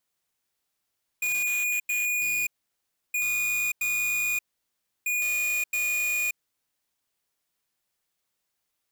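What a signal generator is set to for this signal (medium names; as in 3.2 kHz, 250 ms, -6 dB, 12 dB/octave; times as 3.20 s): beep pattern square 2.45 kHz, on 0.58 s, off 0.09 s, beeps 2, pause 0.67 s, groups 3, -26.5 dBFS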